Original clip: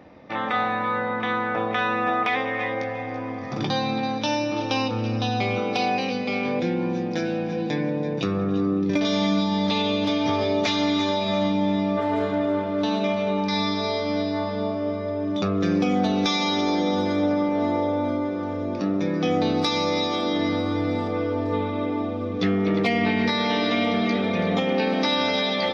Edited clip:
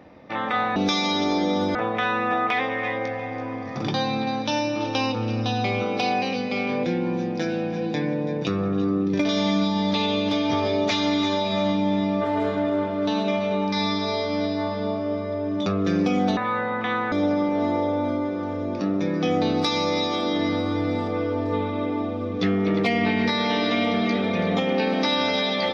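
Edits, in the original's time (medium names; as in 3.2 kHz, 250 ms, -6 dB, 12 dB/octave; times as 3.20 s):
0.76–1.51 s: swap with 16.13–17.12 s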